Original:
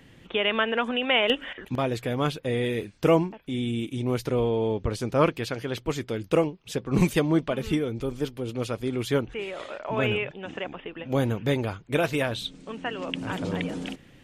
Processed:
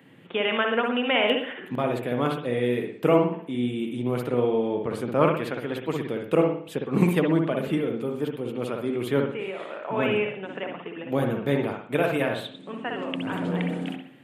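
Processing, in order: high-pass 140 Hz 24 dB/octave; peaking EQ 5.7 kHz -14.5 dB 0.9 oct; on a send: reverberation, pre-delay 57 ms, DRR 3 dB

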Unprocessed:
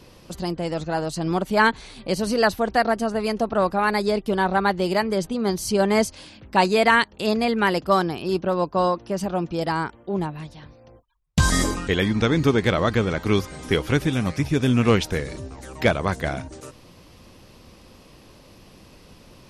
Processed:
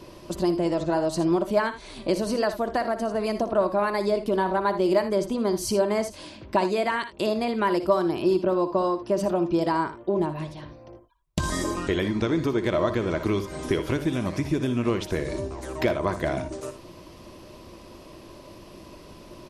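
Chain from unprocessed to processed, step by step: compression, threshold -25 dBFS, peak gain reduction 12.5 dB; small resonant body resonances 350/610/990 Hz, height 11 dB, ringing for 45 ms; on a send: early reflections 59 ms -12.5 dB, 79 ms -14.5 dB

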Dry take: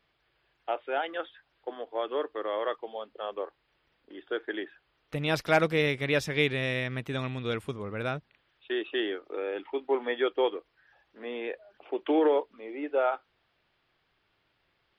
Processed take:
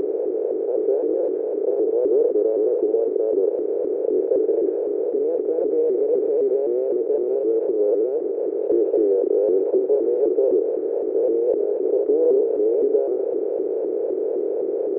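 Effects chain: spectral levelling over time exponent 0.2; peak limiter -14 dBFS, peak gain reduction 9 dB; Butterworth band-pass 420 Hz, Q 3.1; vibrato with a chosen wave saw up 3.9 Hz, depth 160 cents; trim +9 dB

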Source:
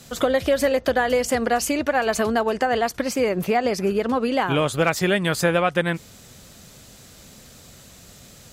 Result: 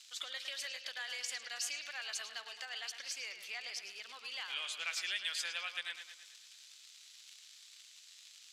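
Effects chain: crackle 140 per s -29 dBFS; ladder band-pass 4.4 kHz, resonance 20%; bucket-brigade echo 108 ms, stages 4096, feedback 54%, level -9 dB; trim +3 dB

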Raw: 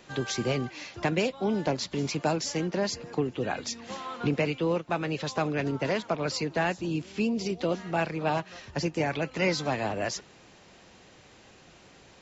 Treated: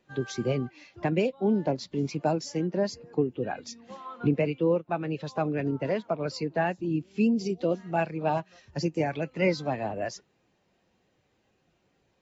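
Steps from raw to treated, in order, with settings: 7.11–9.32 s: treble shelf 6.1 kHz +10 dB; spectral contrast expander 1.5:1; trim +2 dB

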